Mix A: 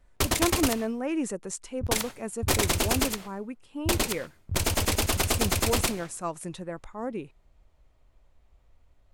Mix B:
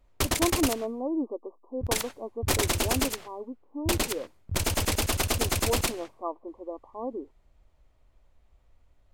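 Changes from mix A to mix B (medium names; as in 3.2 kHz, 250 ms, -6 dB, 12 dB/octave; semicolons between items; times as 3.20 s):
speech: add brick-wall FIR band-pass 230–1200 Hz; background: send -8.0 dB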